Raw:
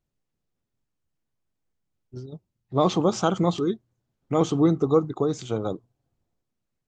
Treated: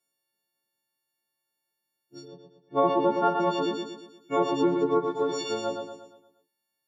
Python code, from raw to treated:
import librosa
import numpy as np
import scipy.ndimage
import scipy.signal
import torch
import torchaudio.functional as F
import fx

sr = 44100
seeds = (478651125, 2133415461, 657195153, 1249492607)

y = fx.freq_snap(x, sr, grid_st=4)
y = fx.quant_float(y, sr, bits=4, at=(4.64, 5.61))
y = scipy.signal.sosfilt(scipy.signal.butter(2, 310.0, 'highpass', fs=sr, output='sos'), y)
y = fx.echo_feedback(y, sr, ms=117, feedback_pct=46, wet_db=-5.5)
y = fx.env_lowpass_down(y, sr, base_hz=1600.0, full_db=-17.5)
y = fx.lowpass(y, sr, hz=3100.0, slope=12, at=(2.27, 3.39), fade=0.02)
y = F.gain(torch.from_numpy(y), -1.5).numpy()